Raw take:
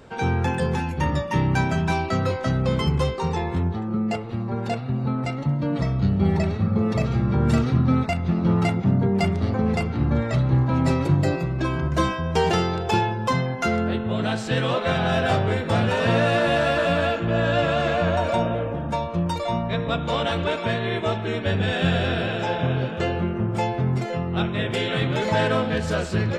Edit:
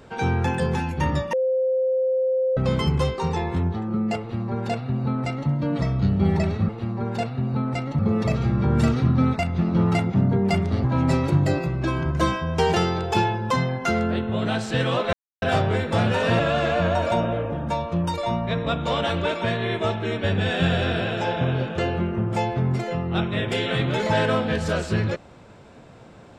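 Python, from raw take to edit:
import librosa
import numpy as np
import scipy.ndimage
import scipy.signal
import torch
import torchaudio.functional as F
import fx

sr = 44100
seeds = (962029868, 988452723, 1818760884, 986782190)

y = fx.edit(x, sr, fx.bleep(start_s=1.33, length_s=1.24, hz=520.0, db=-18.5),
    fx.duplicate(start_s=4.2, length_s=1.3, to_s=6.69),
    fx.cut(start_s=9.54, length_s=1.07),
    fx.silence(start_s=14.9, length_s=0.29),
    fx.cut(start_s=16.16, length_s=1.45), tone=tone)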